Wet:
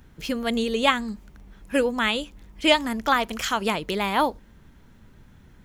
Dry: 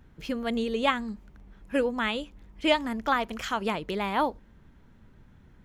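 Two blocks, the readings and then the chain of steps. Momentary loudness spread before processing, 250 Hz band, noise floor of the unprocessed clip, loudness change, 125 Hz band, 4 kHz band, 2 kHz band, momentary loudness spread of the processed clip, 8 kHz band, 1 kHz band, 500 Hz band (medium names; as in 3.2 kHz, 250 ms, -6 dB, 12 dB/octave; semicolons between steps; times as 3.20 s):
9 LU, +3.5 dB, -56 dBFS, +5.0 dB, +3.5 dB, +7.5 dB, +5.5 dB, 9 LU, +11.0 dB, +4.0 dB, +3.5 dB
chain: treble shelf 3.8 kHz +9.5 dB; trim +3.5 dB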